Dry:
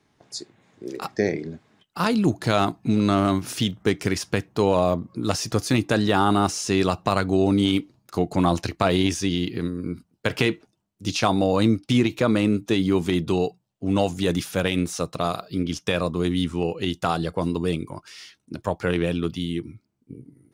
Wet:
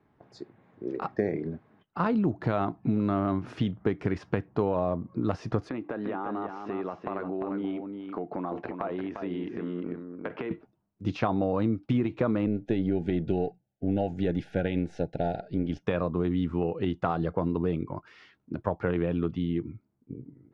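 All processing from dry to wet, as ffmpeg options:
-filter_complex "[0:a]asettb=1/sr,asplit=3[s0][s1][s2];[s0]atrim=end=5.694[s3];[s1]atrim=start=5.69:end=10.51,asetpts=PTS-STARTPTS,afade=t=in:d=0.004:c=qsin,afade=t=out:st=4.816:d=0.004:c=qsin,highpass=260,lowpass=2500,acompressor=threshold=0.0355:ratio=6:attack=3.2:release=140:knee=1:detection=peak,aecho=1:1:349:0.501,atrim=end_sample=212562[s4];[s2]atrim=start=10.506[s5];[s3][s4]acrossfade=d=0.004:c1=hsin:c2=qsin[s6];[s6][s5]acrossfade=d=0.004:c1=qsin:c2=hsin,asettb=1/sr,asplit=3[s7][s8][s9];[s7]atrim=end=12.464[s10];[s8]atrim=start=12.46:end=15.83,asetpts=PTS-STARTPTS,afade=t=in:d=0.004:c=qsin,afade=t=out:st=3.366:d=0.004:c=qsin,aeval=exprs='if(lt(val(0),0),0.708*val(0),val(0))':c=same,asuperstop=centerf=1100:order=20:qfactor=2.1[s11];[s9]atrim=start=15.826[s12];[s10][s11]acrossfade=d=0.004:c1=hsin:c2=qsin[s13];[s13][s12]acrossfade=d=0.004:c1=qsin:c2=hsin,lowpass=1500,acompressor=threshold=0.0708:ratio=4"

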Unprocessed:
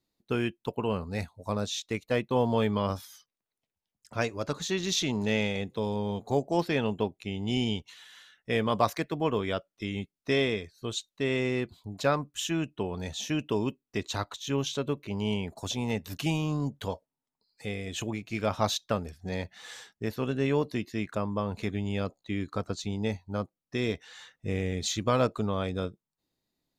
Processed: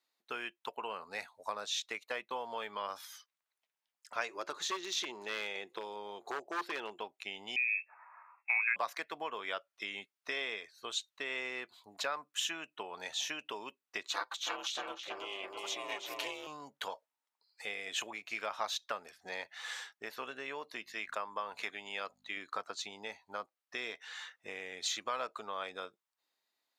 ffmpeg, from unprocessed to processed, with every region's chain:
-filter_complex "[0:a]asettb=1/sr,asplit=3[s0][s1][s2];[s0]atrim=end=4.284[s3];[s1]atrim=start=4.28:end=6.99,asetpts=PTS-STARTPTS,afade=t=in:d=0.004:c=qsin,afade=t=out:st=2.706:d=0.004:c=qsin,equalizer=f=360:t=o:w=0.28:g=14.5,aeval=exprs='0.133*(abs(mod(val(0)/0.133+3,4)-2)-1)':c=same[s4];[s2]atrim=start=6.986[s5];[s3][s4]acrossfade=d=0.004:c1=hsin:c2=qsin[s6];[s6][s5]acrossfade=d=0.004:c1=qsin:c2=hsin,asettb=1/sr,asplit=3[s7][s8][s9];[s7]atrim=end=7.564[s10];[s8]atrim=start=7.56:end=8.76,asetpts=PTS-STARTPTS,afade=t=in:d=0.004:c=qsin,afade=t=out:st=1.196:d=0.004:c=qsin,asplit=2[s11][s12];[s12]adelay=20,volume=0.211[s13];[s11][s13]amix=inputs=2:normalize=0,atrim=end_sample=52920,lowpass=f=2300:t=q:w=0.5098,lowpass=f=2300:t=q:w=0.6013,lowpass=f=2300:t=q:w=0.9,lowpass=f=2300:t=q:w=2.563,afreqshift=-2700,highpass=1000[s14];[s9]atrim=start=8.756[s15];[s10][s14]acrossfade=d=0.004:c1=hsin:c2=qsin[s16];[s16][s15]acrossfade=d=0.004:c1=qsin:c2=hsin,asettb=1/sr,asplit=3[s17][s18][s19];[s17]atrim=end=14.084[s20];[s18]atrim=start=14.08:end=16.47,asetpts=PTS-STARTPTS,afade=t=in:d=0.004:c=qsin,afade=t=out:st=2.386:d=0.004:c=qsin,aecho=1:1:5.9:0.72,atrim=end_sample=105399,aeval=exprs='val(0)*sin(2*PI*190*n/s)':c=same,asplit=2[s21][s22];[s22]adelay=326,lowpass=f=2400:p=1,volume=0.708,asplit=2[s23][s24];[s24]adelay=326,lowpass=f=2400:p=1,volume=0.4,asplit=2[s25][s26];[s26]adelay=326,lowpass=f=2400:p=1,volume=0.4,asplit=2[s27][s28];[s28]adelay=326,lowpass=f=2400:p=1,volume=0.4,asplit=2[s29][s30];[s30]adelay=326,lowpass=f=2400:p=1,volume=0.4[s31];[s21][s23][s25][s27][s29][s31]amix=inputs=6:normalize=0,atrim=end_sample=105399[s32];[s19]atrim=start=16.466[s33];[s20][s32]acrossfade=d=0.004:c1=hsin:c2=qsin[s34];[s34][s33]acrossfade=d=0.004:c1=qsin:c2=hsin,asettb=1/sr,asplit=3[s35][s36][s37];[s35]atrim=end=20.844[s38];[s36]atrim=start=20.84:end=22.37,asetpts=PTS-STARTPTS,afade=t=in:d=0.004:c=qsin,afade=t=out:st=1.526:d=0.004:c=qsin,lowshelf=f=440:g=-6.5,aeval=exprs='val(0)+0.00501*(sin(2*PI*50*n/s)+sin(2*PI*2*50*n/s)/2+sin(2*PI*3*50*n/s)/3+sin(2*PI*4*50*n/s)/4+sin(2*PI*5*50*n/s)/5)':c=same[s39];[s37]atrim=start=22.366[s40];[s38][s39]acrossfade=d=0.004:c1=hsin:c2=qsin[s41];[s41][s40]acrossfade=d=0.004:c1=qsin:c2=hsin,acompressor=threshold=0.0251:ratio=6,highpass=1100,highshelf=f=2800:g=-10,volume=2.51"

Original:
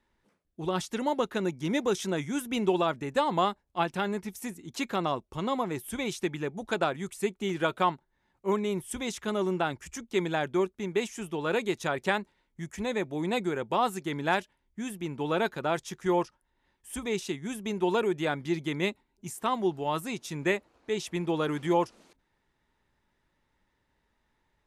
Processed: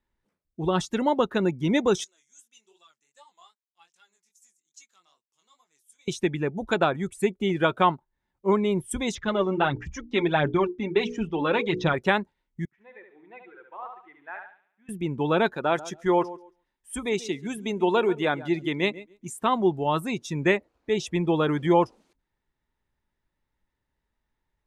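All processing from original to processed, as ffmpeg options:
-filter_complex "[0:a]asettb=1/sr,asplit=3[s0][s1][s2];[s0]atrim=end=2.044[s3];[s1]atrim=start=2.04:end=6.08,asetpts=PTS-STARTPTS,afade=t=in:d=0.004:c=qsin,afade=t=out:st=4.036:d=0.004:c=qsin,flanger=delay=17:depth=6.1:speed=2.5,bandpass=f=6900:t=q:w=2.7[s4];[s2]atrim=start=6.076[s5];[s3][s4]acrossfade=d=0.004:c1=hsin:c2=qsin[s6];[s6][s5]acrossfade=d=0.004:c1=qsin:c2=hsin,asettb=1/sr,asplit=3[s7][s8][s9];[s7]atrim=end=9.154[s10];[s8]atrim=start=9.15:end=11.94,asetpts=PTS-STARTPTS,afade=t=in:d=0.004:c=qsin,afade=t=out:st=2.786:d=0.004:c=qsin,lowpass=f=5600:w=0.5412,lowpass=f=5600:w=1.3066,bandreject=f=60:t=h:w=6,bandreject=f=120:t=h:w=6,bandreject=f=180:t=h:w=6,bandreject=f=240:t=h:w=6,bandreject=f=300:t=h:w=6,bandreject=f=360:t=h:w=6,bandreject=f=420:t=h:w=6,bandreject=f=480:t=h:w=6,aphaser=in_gain=1:out_gain=1:delay=3.8:decay=0.52:speed=1.5:type=sinusoidal[s11];[s9]atrim=start=11.936[s12];[s10][s11]acrossfade=d=0.004:c1=hsin:c2=qsin[s13];[s13][s12]acrossfade=d=0.004:c1=qsin:c2=hsin,asettb=1/sr,asplit=3[s14][s15][s16];[s14]atrim=end=12.654[s17];[s15]atrim=start=12.65:end=14.89,asetpts=PTS-STARTPTS,afade=t=in:d=0.004:c=qsin,afade=t=out:st=2.236:d=0.004:c=qsin,lowpass=f=2100:w=0.5412,lowpass=f=2100:w=1.3066,aderivative,aecho=1:1:71|142|213|284|355|426|497:0.631|0.341|0.184|0.0994|0.0537|0.029|0.0156,atrim=end_sample=98784[s18];[s16]atrim=start=14.886[s19];[s17][s18]acrossfade=d=0.004:c1=hsin:c2=qsin[s20];[s20][s19]acrossfade=d=0.004:c1=qsin:c2=hsin,asettb=1/sr,asplit=3[s21][s22][s23];[s21]atrim=end=15.534[s24];[s22]atrim=start=15.53:end=19.33,asetpts=PTS-STARTPTS,afade=t=in:d=0.004:c=qsin,afade=t=out:st=3.796:d=0.004:c=qsin,equalizer=f=82:t=o:w=1.8:g=-12.5,aecho=1:1:138|276|414:0.158|0.0428|0.0116,atrim=end_sample=167580[s25];[s23]atrim=start=19.326[s26];[s24][s25]acrossfade=d=0.004:c1=hsin:c2=qsin[s27];[s27][s26]acrossfade=d=0.004:c1=qsin:c2=hsin,lowshelf=f=100:g=7.5,afftdn=nr=14:nf=-43,volume=1.78"

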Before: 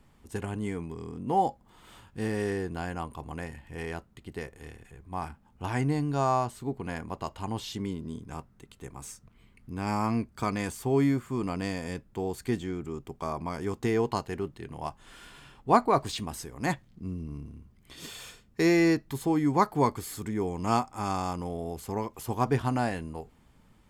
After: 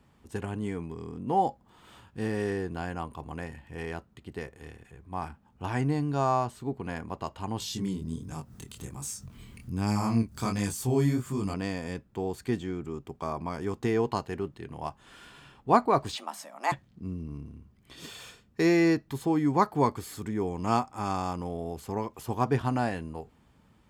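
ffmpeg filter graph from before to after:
-filter_complex "[0:a]asettb=1/sr,asplit=3[s0][s1][s2];[s0]atrim=end=7.604[s3];[s1]atrim=start=7.6:end=11.54,asetpts=PTS-STARTPTS,afade=t=in:d=0.004:c=qsin,afade=t=out:st=3.936:d=0.004:c=qsin,acompressor=mode=upward:threshold=0.0178:ratio=2.5:attack=3.2:release=140:knee=2.83:detection=peak,bass=f=250:g=7,treble=f=4000:g=13,flanger=delay=19.5:depth=7.9:speed=1.3[s4];[s2]atrim=start=11.536[s5];[s3][s4]acrossfade=d=0.004:c1=hsin:c2=qsin[s6];[s6][s5]acrossfade=d=0.004:c1=qsin:c2=hsin,asettb=1/sr,asplit=3[s7][s8][s9];[s7]atrim=end=16.164[s10];[s8]atrim=start=16.16:end=16.72,asetpts=PTS-STARTPTS,afade=t=in:d=0.004:c=qsin,afade=t=out:st=0.556:d=0.004:c=qsin,lowshelf=f=400:t=q:w=3:g=-11.5,afreqshift=140[s11];[s9]atrim=start=16.716[s12];[s10][s11]acrossfade=d=0.004:c1=hsin:c2=qsin[s13];[s13][s12]acrossfade=d=0.004:c1=qsin:c2=hsin,highpass=53,equalizer=f=12000:w=0.46:g=-5,bandreject=f=2100:w=24"

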